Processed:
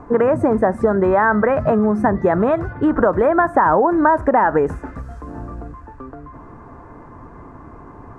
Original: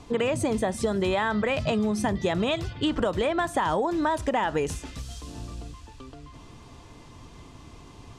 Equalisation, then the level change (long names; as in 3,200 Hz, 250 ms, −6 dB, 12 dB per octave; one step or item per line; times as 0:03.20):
drawn EQ curve 130 Hz 0 dB, 260 Hz +4 dB, 1,600 Hz +7 dB, 3,200 Hz −27 dB, 10,000 Hz −20 dB
+5.5 dB